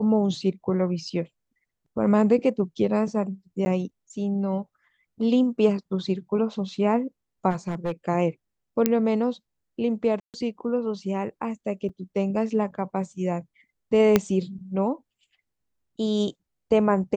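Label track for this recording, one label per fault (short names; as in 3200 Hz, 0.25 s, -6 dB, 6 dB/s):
3.650000	3.660000	gap 10 ms
7.500000	7.920000	clipped -22.5 dBFS
8.860000	8.860000	pop -6 dBFS
10.200000	10.340000	gap 0.138 s
11.890000	11.900000	gap 5.7 ms
14.160000	14.160000	pop -4 dBFS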